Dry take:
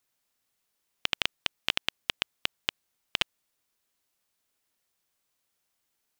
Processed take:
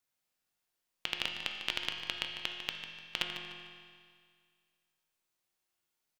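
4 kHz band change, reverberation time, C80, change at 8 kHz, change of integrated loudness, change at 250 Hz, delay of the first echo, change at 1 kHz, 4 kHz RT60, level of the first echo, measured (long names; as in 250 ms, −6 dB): −4.5 dB, 2.0 s, 3.5 dB, −6.0 dB, −5.0 dB, −3.0 dB, 149 ms, −5.0 dB, 2.0 s, −10.5 dB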